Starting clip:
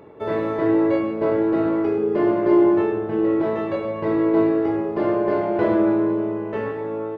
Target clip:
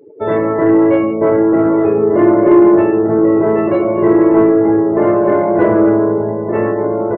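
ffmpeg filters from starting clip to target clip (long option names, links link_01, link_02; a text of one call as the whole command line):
ffmpeg -i in.wav -filter_complex "[0:a]afftdn=noise_reduction=33:noise_floor=-35,asplit=2[link_01][link_02];[link_02]adelay=1516,volume=-6dB,highshelf=frequency=4000:gain=-34.1[link_03];[link_01][link_03]amix=inputs=2:normalize=0,acontrast=81,volume=2dB" out.wav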